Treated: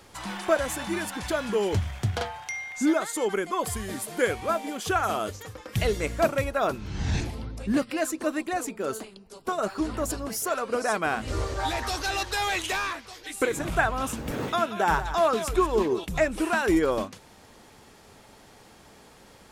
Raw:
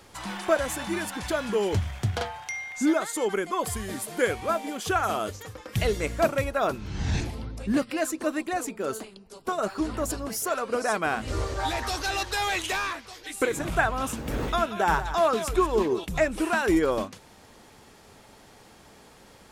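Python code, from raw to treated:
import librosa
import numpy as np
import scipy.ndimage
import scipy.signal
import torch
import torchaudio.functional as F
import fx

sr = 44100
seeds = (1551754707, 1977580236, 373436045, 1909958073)

y = fx.highpass(x, sr, hz=99.0, slope=24, at=(14.31, 14.91))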